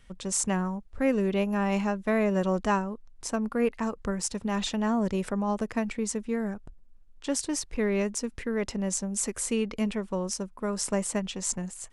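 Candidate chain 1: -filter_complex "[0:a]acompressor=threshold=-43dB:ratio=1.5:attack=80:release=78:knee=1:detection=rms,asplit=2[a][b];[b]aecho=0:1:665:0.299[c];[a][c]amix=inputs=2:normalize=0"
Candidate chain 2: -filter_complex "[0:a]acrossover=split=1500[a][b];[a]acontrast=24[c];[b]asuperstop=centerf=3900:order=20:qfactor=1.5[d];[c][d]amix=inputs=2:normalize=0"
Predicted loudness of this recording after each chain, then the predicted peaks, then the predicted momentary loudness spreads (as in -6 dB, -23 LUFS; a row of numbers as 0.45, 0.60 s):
-34.0, -25.0 LUFS; -16.5, -10.5 dBFS; 4, 7 LU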